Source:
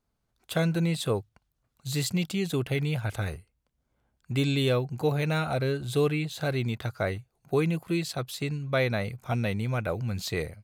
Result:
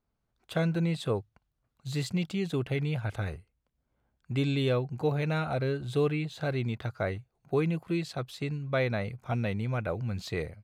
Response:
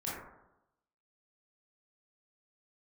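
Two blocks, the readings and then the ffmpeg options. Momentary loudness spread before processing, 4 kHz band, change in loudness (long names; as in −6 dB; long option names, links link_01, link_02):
6 LU, −5.5 dB, −2.5 dB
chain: -af "aemphasis=mode=reproduction:type=50kf,volume=-2dB"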